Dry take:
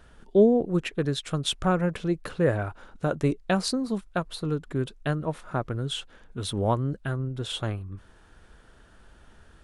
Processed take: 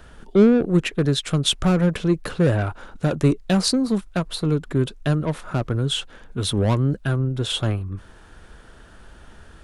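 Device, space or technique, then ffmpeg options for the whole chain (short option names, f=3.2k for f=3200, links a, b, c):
one-band saturation: -filter_complex "[0:a]acrossover=split=340|2900[a][b][c];[b]asoftclip=type=tanh:threshold=-31dB[d];[a][d][c]amix=inputs=3:normalize=0,volume=8dB"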